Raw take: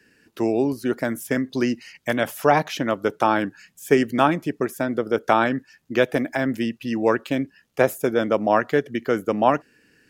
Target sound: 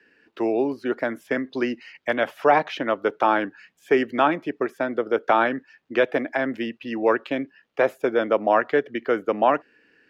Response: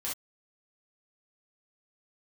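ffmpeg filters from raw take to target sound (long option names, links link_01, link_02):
-filter_complex "[0:a]apsyclip=8dB,acrossover=split=280 3900:gain=0.2 1 0.0708[link_01][link_02][link_03];[link_01][link_02][link_03]amix=inputs=3:normalize=0,volume=-7dB"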